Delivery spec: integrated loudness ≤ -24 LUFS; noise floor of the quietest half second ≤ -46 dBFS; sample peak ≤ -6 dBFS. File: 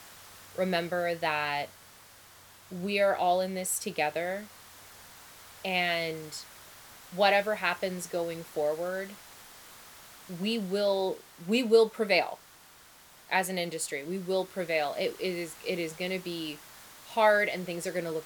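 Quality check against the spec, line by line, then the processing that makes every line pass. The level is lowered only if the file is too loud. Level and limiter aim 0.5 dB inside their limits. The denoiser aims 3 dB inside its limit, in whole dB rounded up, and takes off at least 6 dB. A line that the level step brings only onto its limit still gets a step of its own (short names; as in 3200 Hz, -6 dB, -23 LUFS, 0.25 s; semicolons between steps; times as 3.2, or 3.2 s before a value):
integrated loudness -29.5 LUFS: OK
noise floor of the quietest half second -55 dBFS: OK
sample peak -10.0 dBFS: OK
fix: none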